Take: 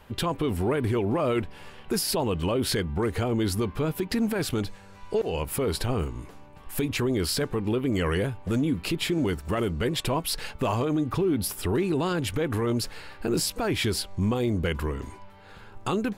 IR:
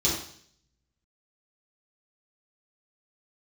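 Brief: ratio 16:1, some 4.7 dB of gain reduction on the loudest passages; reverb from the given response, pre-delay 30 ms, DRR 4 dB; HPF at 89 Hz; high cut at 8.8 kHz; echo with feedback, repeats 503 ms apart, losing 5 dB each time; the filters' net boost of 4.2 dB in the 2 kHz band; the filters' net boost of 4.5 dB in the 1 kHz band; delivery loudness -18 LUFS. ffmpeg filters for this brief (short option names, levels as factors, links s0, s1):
-filter_complex "[0:a]highpass=89,lowpass=8800,equalizer=f=1000:t=o:g=4.5,equalizer=f=2000:t=o:g=4,acompressor=threshold=0.0562:ratio=16,aecho=1:1:503|1006|1509|2012|2515|3018|3521:0.562|0.315|0.176|0.0988|0.0553|0.031|0.0173,asplit=2[s0][s1];[1:a]atrim=start_sample=2205,adelay=30[s2];[s1][s2]afir=irnorm=-1:irlink=0,volume=0.178[s3];[s0][s3]amix=inputs=2:normalize=0,volume=2.51"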